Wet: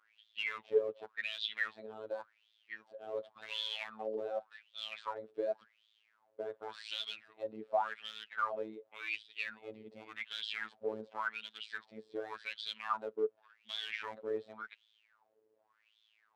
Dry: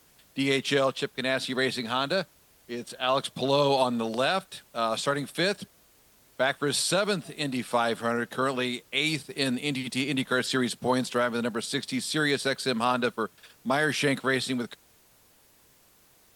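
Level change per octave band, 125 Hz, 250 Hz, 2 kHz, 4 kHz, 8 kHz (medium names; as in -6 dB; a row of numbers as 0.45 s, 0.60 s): -31.0 dB, -23.5 dB, -12.0 dB, -11.5 dB, under -25 dB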